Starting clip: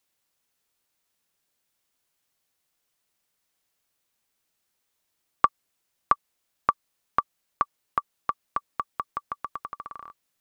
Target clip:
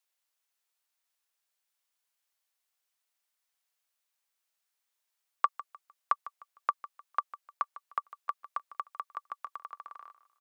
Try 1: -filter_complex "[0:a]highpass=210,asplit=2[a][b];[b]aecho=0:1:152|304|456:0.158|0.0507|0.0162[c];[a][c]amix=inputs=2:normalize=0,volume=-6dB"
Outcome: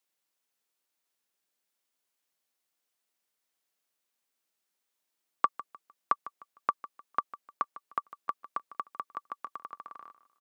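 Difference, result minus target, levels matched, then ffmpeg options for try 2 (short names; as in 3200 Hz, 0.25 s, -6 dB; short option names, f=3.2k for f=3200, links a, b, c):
250 Hz band +13.5 dB
-filter_complex "[0:a]highpass=690,asplit=2[a][b];[b]aecho=0:1:152|304|456:0.158|0.0507|0.0162[c];[a][c]amix=inputs=2:normalize=0,volume=-6dB"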